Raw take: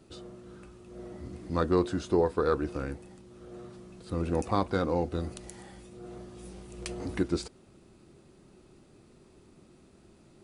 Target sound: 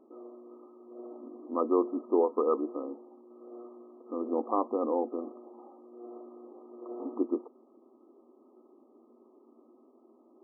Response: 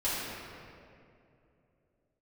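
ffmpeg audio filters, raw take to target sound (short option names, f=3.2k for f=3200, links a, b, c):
-af "afftfilt=real='re*between(b*sr/4096,220,1300)':imag='im*between(b*sr/4096,220,1300)':win_size=4096:overlap=0.75"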